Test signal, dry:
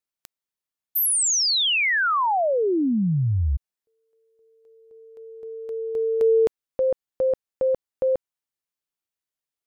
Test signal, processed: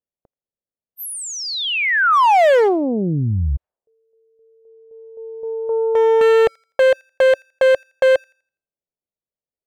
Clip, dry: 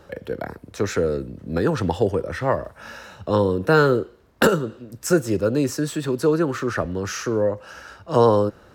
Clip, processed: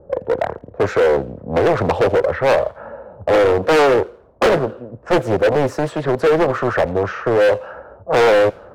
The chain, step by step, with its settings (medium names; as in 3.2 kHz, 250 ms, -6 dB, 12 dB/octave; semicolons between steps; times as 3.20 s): level-controlled noise filter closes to 340 Hz, open at -19.5 dBFS; FFT filter 320 Hz 0 dB, 550 Hz +12 dB, 6.4 kHz -11 dB; overload inside the chain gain 14 dB; on a send: feedback echo behind a high-pass 83 ms, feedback 31%, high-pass 2.4 kHz, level -19 dB; on the sum: loudspeaker Doppler distortion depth 0.83 ms; trim +3.5 dB